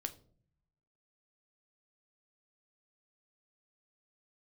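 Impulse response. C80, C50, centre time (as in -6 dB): 20.5 dB, 16.5 dB, 5 ms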